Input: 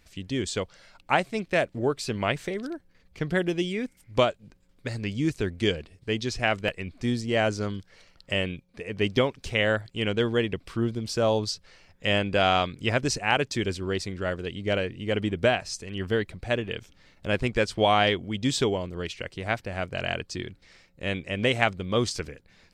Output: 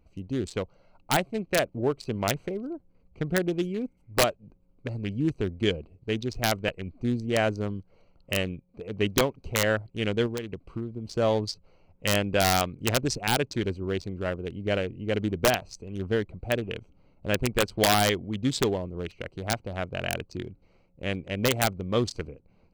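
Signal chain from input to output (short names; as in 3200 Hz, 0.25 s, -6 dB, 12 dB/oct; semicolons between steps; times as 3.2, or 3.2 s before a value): Wiener smoothing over 25 samples; wrapped overs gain 12.5 dB; 10.26–11.07 compressor 6:1, threshold -30 dBFS, peak gain reduction 10.5 dB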